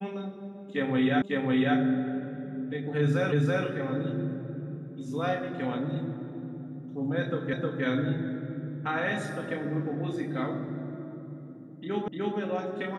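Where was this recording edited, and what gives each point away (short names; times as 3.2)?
1.22 repeat of the last 0.55 s
3.32 repeat of the last 0.33 s
7.53 repeat of the last 0.31 s
12.08 repeat of the last 0.3 s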